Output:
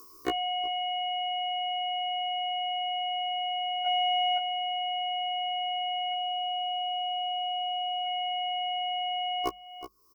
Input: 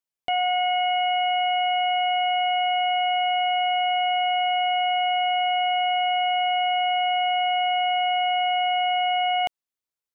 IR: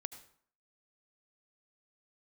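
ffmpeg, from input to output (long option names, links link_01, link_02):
-filter_complex "[0:a]aemphasis=mode=production:type=50fm,bandreject=frequency=50:width_type=h:width=6,bandreject=frequency=100:width_type=h:width=6,bandreject=frequency=150:width_type=h:width=6,bandreject=frequency=200:width_type=h:width=6,aecho=1:1:2.7:0.88,aecho=1:1:371:0.112,acompressor=mode=upward:threshold=-23dB:ratio=2.5,firequalizer=gain_entry='entry(210,0);entry(340,9);entry(510,2);entry(740,-20);entry(1100,14);entry(1600,-25);entry(2200,-21);entry(3600,-27);entry(5100,-4);entry(7300,-17)':delay=0.05:min_phase=1,aeval=exprs='0.211*sin(PI/2*2.24*val(0)/0.211)':channel_layout=same,asettb=1/sr,asplit=3[link_01][link_02][link_03];[link_01]atrim=end=3.864[link_04];[link_02]atrim=start=3.86:end=4.38,asetpts=PTS-STARTPTS,afade=type=in:duration=0.004:curve=qsin,afade=type=out:start_time=0.516:duration=0.004:curve=qsin,acontrast=26[link_05];[link_03]atrim=start=4.376[link_06];[link_04][link_05]acrossfade=duration=0.004:curve1=hsin:curve2=qsin[link_07];[link_07][link_06]acrossfade=duration=0.004:curve1=qsin:curve2=hsin,asplit=3[link_08][link_09][link_10];[link_08]afade=type=out:start_time=6.12:duration=0.02[link_11];[link_09]bandreject=frequency=2100:width=5.4,afade=type=in:start_time=6.12:duration=0.02,afade=type=out:start_time=8.05:duration=0.02[link_12];[link_10]afade=type=in:start_time=8.05:duration=0.02[link_13];[link_11][link_12][link_13]amix=inputs=3:normalize=0,afftfilt=real='re*1.73*eq(mod(b,3),0)':imag='im*1.73*eq(mod(b,3),0)':win_size=2048:overlap=0.75"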